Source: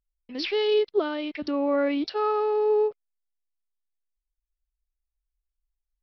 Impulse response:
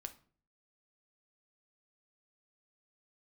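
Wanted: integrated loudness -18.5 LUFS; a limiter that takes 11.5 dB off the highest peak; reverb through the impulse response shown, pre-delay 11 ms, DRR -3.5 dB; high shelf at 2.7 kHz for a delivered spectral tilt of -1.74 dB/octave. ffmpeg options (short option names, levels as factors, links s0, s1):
-filter_complex "[0:a]highshelf=f=2700:g=-7,alimiter=level_in=1.12:limit=0.0631:level=0:latency=1,volume=0.891,asplit=2[s0][s1];[1:a]atrim=start_sample=2205,adelay=11[s2];[s1][s2]afir=irnorm=-1:irlink=0,volume=2.37[s3];[s0][s3]amix=inputs=2:normalize=0,volume=3.35"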